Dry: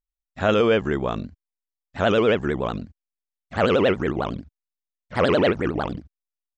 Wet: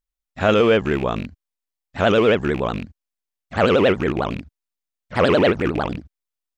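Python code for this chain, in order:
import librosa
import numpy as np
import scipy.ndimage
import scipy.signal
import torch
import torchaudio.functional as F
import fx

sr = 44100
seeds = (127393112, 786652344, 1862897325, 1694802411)

y = fx.rattle_buzz(x, sr, strikes_db=-29.0, level_db=-25.0)
y = y * 10.0 ** (3.0 / 20.0)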